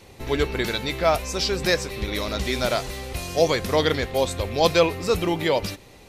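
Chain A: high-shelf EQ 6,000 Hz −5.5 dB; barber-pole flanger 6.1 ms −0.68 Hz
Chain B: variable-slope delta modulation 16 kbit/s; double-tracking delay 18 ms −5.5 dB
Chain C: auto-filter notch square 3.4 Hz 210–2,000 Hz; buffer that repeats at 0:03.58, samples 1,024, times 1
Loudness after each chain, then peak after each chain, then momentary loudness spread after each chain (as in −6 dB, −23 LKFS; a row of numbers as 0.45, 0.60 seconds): −27.5, −24.5, −24.0 LKFS; −9.0, −5.5, −5.5 dBFS; 7, 8, 8 LU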